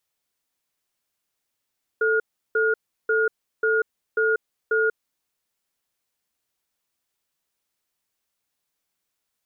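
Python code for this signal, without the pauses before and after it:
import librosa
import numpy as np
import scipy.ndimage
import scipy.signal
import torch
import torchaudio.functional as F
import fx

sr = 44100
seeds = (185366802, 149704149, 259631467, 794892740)

y = fx.cadence(sr, length_s=2.97, low_hz=441.0, high_hz=1430.0, on_s=0.19, off_s=0.35, level_db=-20.5)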